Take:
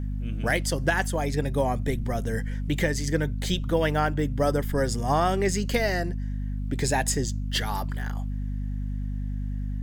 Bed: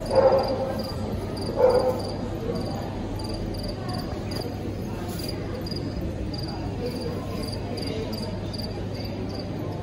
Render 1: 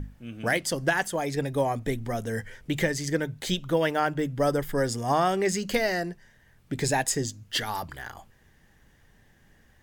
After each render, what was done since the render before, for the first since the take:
mains-hum notches 50/100/150/200/250 Hz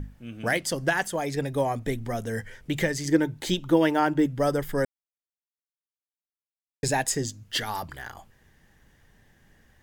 0:03.05–0:04.26: hollow resonant body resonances 320/880 Hz, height 10 dB
0:04.85–0:06.83: silence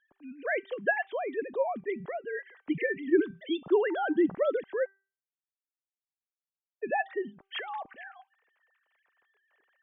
three sine waves on the formant tracks
tuned comb filter 390 Hz, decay 0.38 s, harmonics all, mix 40%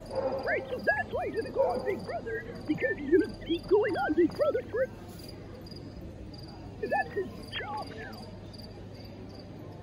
mix in bed −13.5 dB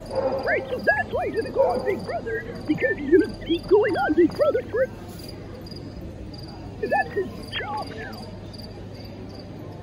level +7 dB

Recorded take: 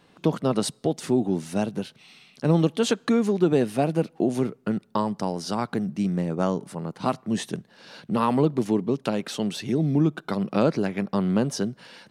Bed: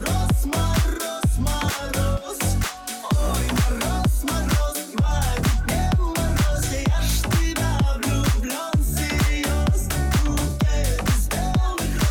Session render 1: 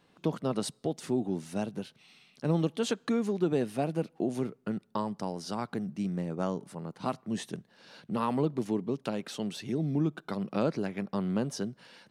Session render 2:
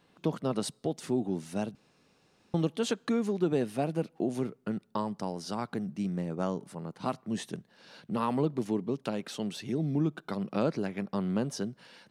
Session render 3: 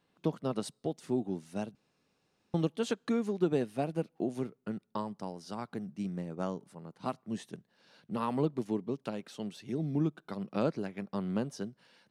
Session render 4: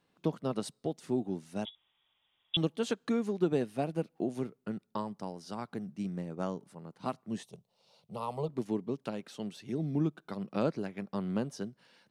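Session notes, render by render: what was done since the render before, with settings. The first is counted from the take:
level −7.5 dB
0:01.75–0:02.54: fill with room tone
expander for the loud parts 1.5 to 1, over −41 dBFS
0:01.65–0:02.57: voice inversion scrambler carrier 3,600 Hz; 0:07.43–0:08.49: phaser with its sweep stopped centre 680 Hz, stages 4

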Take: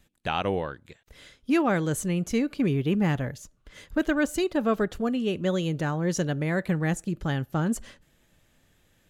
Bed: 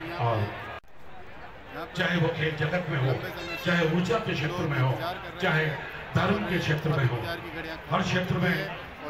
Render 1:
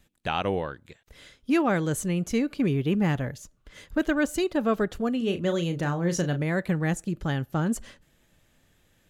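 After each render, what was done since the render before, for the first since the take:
0:05.17–0:06.43: double-tracking delay 35 ms −9 dB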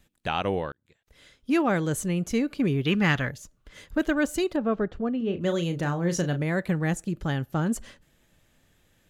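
0:00.72–0:01.59: fade in
0:02.85–0:03.30: flat-topped bell 2,600 Hz +10 dB 2.8 octaves
0:04.56–0:05.41: head-to-tape spacing loss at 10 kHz 29 dB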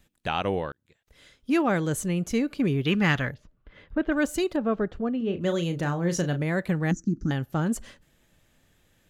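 0:03.34–0:04.12: high-frequency loss of the air 380 metres
0:06.91–0:07.31: drawn EQ curve 150 Hz 0 dB, 270 Hz +11 dB, 580 Hz −20 dB, 900 Hz −23 dB, 1,400 Hz −8 dB, 2,300 Hz −20 dB, 3,300 Hz −26 dB, 6,100 Hz +5 dB, 9,500 Hz −29 dB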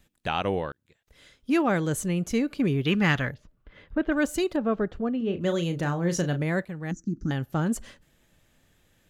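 0:06.65–0:07.45: fade in, from −13 dB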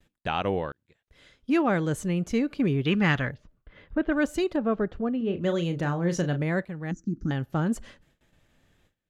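noise gate with hold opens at −53 dBFS
high-shelf EQ 6,900 Hz −11.5 dB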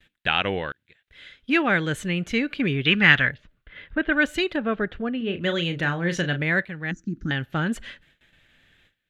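flat-topped bell 2,400 Hz +12 dB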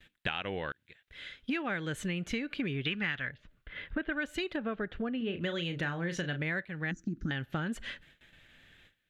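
downward compressor 8 to 1, threshold −31 dBFS, peak gain reduction 20.5 dB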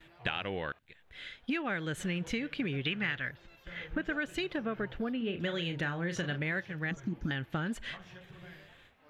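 mix in bed −25.5 dB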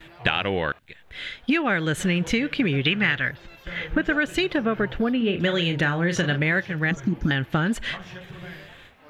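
level +11.5 dB

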